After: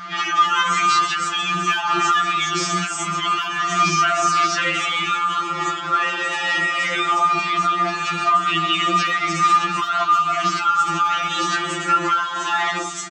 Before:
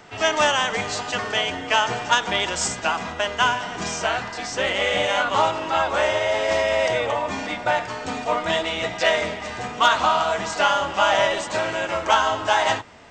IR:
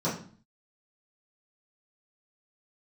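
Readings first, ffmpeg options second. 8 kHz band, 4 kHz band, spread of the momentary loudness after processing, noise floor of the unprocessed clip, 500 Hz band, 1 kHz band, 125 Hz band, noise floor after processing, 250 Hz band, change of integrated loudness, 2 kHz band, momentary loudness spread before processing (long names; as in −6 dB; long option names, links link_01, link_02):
+2.5 dB, +1.0 dB, 5 LU, −34 dBFS, −9.0 dB, +4.5 dB, +3.5 dB, −27 dBFS, +3.0 dB, +3.0 dB, +1.5 dB, 7 LU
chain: -filter_complex "[0:a]highpass=frequency=140:poles=1,acrossover=split=820|6000[link_01][link_02][link_03];[link_01]adelay=70[link_04];[link_03]adelay=300[link_05];[link_04][link_02][link_05]amix=inputs=3:normalize=0,asoftclip=type=hard:threshold=-11.5dB,acompressor=threshold=-25dB:ratio=6,superequalizer=6b=1.58:7b=0.447:9b=0.631:10b=3.55:16b=0.631,aeval=exprs='val(0)+0.002*(sin(2*PI*60*n/s)+sin(2*PI*2*60*n/s)/2+sin(2*PI*3*60*n/s)/3+sin(2*PI*4*60*n/s)/4+sin(2*PI*5*60*n/s)/5)':channel_layout=same,equalizer=frequency=480:width=4.1:gain=-12.5,alimiter=level_in=21.5dB:limit=-1dB:release=50:level=0:latency=1,afftfilt=real='re*2.83*eq(mod(b,8),0)':imag='im*2.83*eq(mod(b,8),0)':win_size=2048:overlap=0.75,volume=-7dB"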